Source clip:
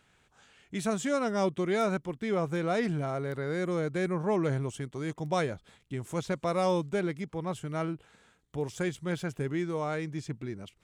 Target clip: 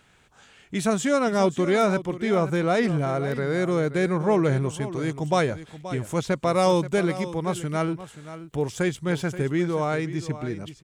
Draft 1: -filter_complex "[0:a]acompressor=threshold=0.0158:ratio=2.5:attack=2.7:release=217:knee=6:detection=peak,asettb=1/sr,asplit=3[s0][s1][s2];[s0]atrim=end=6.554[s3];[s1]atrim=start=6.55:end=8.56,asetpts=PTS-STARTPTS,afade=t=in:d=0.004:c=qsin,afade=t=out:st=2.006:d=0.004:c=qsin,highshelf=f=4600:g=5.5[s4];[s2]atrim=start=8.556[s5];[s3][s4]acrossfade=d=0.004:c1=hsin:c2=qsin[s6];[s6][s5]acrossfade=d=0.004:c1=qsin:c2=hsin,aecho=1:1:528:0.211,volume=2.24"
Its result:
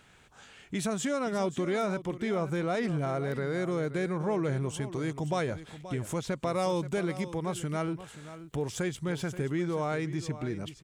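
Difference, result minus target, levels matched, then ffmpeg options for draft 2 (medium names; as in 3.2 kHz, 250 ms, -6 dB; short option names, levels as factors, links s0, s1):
compression: peak gain reduction +10 dB
-filter_complex "[0:a]asettb=1/sr,asplit=3[s0][s1][s2];[s0]atrim=end=6.554[s3];[s1]atrim=start=6.55:end=8.56,asetpts=PTS-STARTPTS,afade=t=in:d=0.004:c=qsin,afade=t=out:st=2.006:d=0.004:c=qsin,highshelf=f=4600:g=5.5[s4];[s2]atrim=start=8.556[s5];[s3][s4]acrossfade=d=0.004:c1=hsin:c2=qsin[s6];[s6][s5]acrossfade=d=0.004:c1=qsin:c2=hsin,aecho=1:1:528:0.211,volume=2.24"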